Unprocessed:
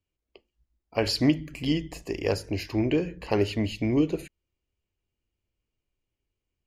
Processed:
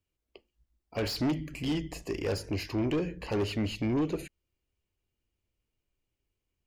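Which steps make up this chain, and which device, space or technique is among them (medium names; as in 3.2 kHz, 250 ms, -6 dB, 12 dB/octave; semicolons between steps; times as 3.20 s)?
saturation between pre-emphasis and de-emphasis (treble shelf 2.1 kHz +10 dB; saturation -24 dBFS, distortion -8 dB; treble shelf 2.1 kHz -10 dB)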